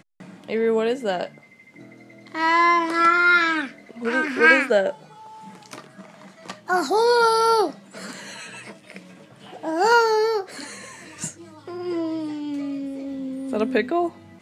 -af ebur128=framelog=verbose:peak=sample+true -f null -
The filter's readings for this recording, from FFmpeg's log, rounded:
Integrated loudness:
  I:         -20.6 LUFS
  Threshold: -32.7 LUFS
Loudness range:
  LRA:         8.6 LU
  Threshold: -42.3 LUFS
  LRA low:   -27.5 LUFS
  LRA high:  -18.8 LUFS
Sample peak:
  Peak:       -2.5 dBFS
True peak:
  Peak:       -2.5 dBFS